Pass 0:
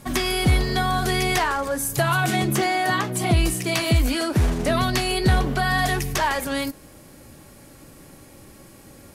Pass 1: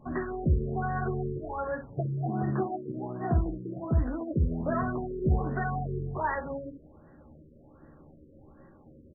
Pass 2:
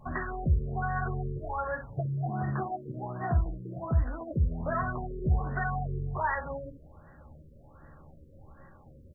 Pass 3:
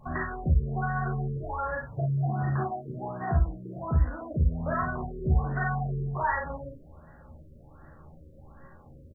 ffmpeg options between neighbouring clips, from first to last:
ffmpeg -i in.wav -filter_complex "[0:a]asplit=2[link_01][link_02];[link_02]aecho=0:1:13|66:0.631|0.376[link_03];[link_01][link_03]amix=inputs=2:normalize=0,afftfilt=real='re*lt(b*sr/1024,550*pow(2000/550,0.5+0.5*sin(2*PI*1.3*pts/sr)))':imag='im*lt(b*sr/1024,550*pow(2000/550,0.5+0.5*sin(2*PI*1.3*pts/sr)))':win_size=1024:overlap=0.75,volume=-8.5dB" out.wav
ffmpeg -i in.wav -filter_complex "[0:a]equalizer=frequency=310:width=0.77:gain=-14,asplit=2[link_01][link_02];[link_02]acompressor=threshold=-38dB:ratio=6,volume=2dB[link_03];[link_01][link_03]amix=inputs=2:normalize=0" out.wav
ffmpeg -i in.wav -af "aecho=1:1:37|50:0.562|0.376" out.wav

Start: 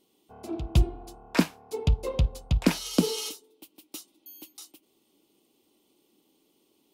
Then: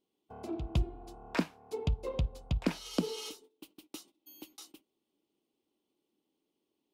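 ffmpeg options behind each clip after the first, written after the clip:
ffmpeg -i in.wav -af "aemphasis=mode=reproduction:type=cd,acompressor=threshold=-45dB:ratio=1.5,agate=range=-15dB:threshold=-58dB:ratio=16:detection=peak,volume=1dB" out.wav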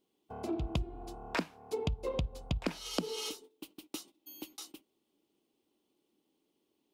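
ffmpeg -i in.wav -af "acompressor=threshold=-34dB:ratio=6,volume=4dB" out.wav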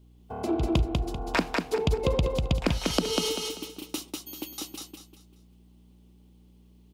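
ffmpeg -i in.wav -af "aeval=exprs='val(0)+0.000794*(sin(2*PI*60*n/s)+sin(2*PI*2*60*n/s)/2+sin(2*PI*3*60*n/s)/3+sin(2*PI*4*60*n/s)/4+sin(2*PI*5*60*n/s)/5)':channel_layout=same,aecho=1:1:195|390|585|780:0.708|0.227|0.0725|0.0232,volume=8dB" out.wav

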